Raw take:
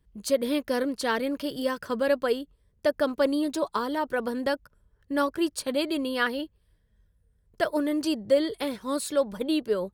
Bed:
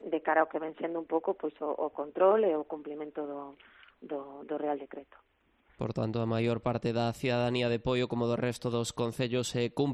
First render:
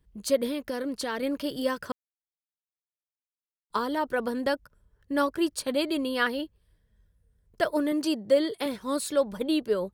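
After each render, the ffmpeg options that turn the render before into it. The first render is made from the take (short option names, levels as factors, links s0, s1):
-filter_complex "[0:a]asettb=1/sr,asplit=3[s0][s1][s2];[s0]atrim=end=0.464[s3];[s1]atrim=start=0.46:end=1.23,asetpts=PTS-STARTPTS,afade=t=in:d=0.004:c=qsin,afade=t=out:st=0.766:d=0.004:c=qsin,acompressor=threshold=0.0447:ratio=6:attack=3.2:release=140:knee=1:detection=peak[s4];[s2]atrim=start=1.226[s5];[s3][s4]acrossfade=d=0.004:c1=hsin:c2=qsin[s6];[s6][s5]acrossfade=d=0.004:c1=qsin:c2=hsin,asettb=1/sr,asplit=3[s7][s8][s9];[s7]atrim=end=7.924[s10];[s8]atrim=start=7.92:end=8.66,asetpts=PTS-STARTPTS,afade=t=in:d=0.004:c=qsin,afade=t=out:st=0.736:d=0.004:c=qsin,highpass=150[s11];[s9]atrim=start=8.656[s12];[s10][s11]acrossfade=d=0.004:c1=hsin:c2=qsin[s13];[s13][s12]acrossfade=d=0.004:c1=qsin:c2=hsin,asplit=3[s14][s15][s16];[s14]atrim=end=1.92,asetpts=PTS-STARTPTS,afade=t=out:st=1.916:d=0.004:c=hsin[s17];[s15]atrim=start=1.92:end=3.7,asetpts=PTS-STARTPTS,volume=0[s18];[s16]atrim=start=3.7,asetpts=PTS-STARTPTS,afade=t=in:d=0.004:c=hsin[s19];[s17][s18][s19]concat=n=3:v=0:a=1"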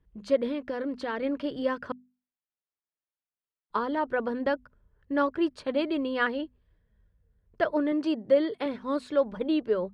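-af "lowpass=2500,bandreject=f=50:t=h:w=6,bandreject=f=100:t=h:w=6,bandreject=f=150:t=h:w=6,bandreject=f=200:t=h:w=6,bandreject=f=250:t=h:w=6"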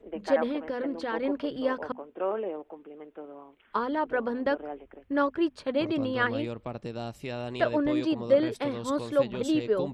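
-filter_complex "[1:a]volume=0.501[s0];[0:a][s0]amix=inputs=2:normalize=0"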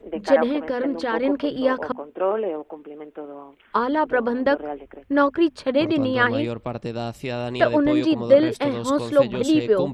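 -af "volume=2.37"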